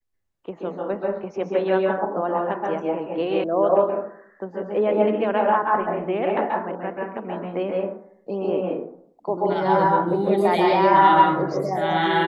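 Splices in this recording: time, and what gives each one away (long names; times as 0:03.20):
0:03.44: cut off before it has died away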